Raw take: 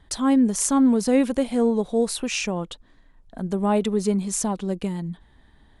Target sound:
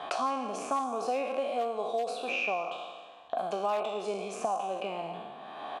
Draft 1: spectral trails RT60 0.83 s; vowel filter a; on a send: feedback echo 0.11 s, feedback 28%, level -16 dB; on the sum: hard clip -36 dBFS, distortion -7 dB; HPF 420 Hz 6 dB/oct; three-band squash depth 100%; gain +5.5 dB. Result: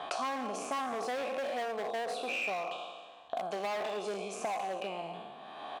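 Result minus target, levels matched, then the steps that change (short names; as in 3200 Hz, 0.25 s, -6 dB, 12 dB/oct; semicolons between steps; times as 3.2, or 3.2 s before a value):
hard clip: distortion +20 dB
change: hard clip -25.5 dBFS, distortion -28 dB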